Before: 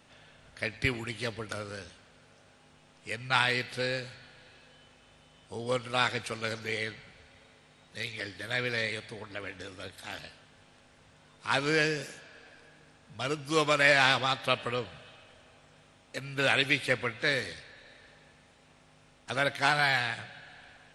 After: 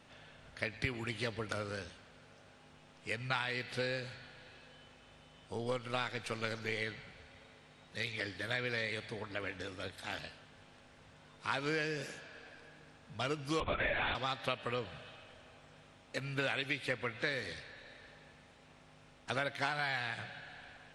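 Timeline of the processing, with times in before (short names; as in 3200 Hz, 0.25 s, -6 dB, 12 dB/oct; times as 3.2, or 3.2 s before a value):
5.53–6.82 half-wave gain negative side -3 dB
13.6–14.15 LPC vocoder at 8 kHz whisper
whole clip: high shelf 7700 Hz -9 dB; compressor 6:1, threshold -32 dBFS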